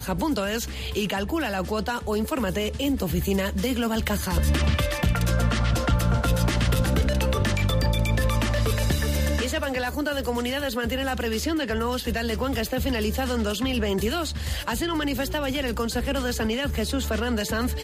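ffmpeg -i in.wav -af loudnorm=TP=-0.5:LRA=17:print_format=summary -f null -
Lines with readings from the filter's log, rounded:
Input Integrated:    -25.4 LUFS
Input True Peak:     -10.8 dBTP
Input LRA:             2.8 LU
Input Threshold:     -35.4 LUFS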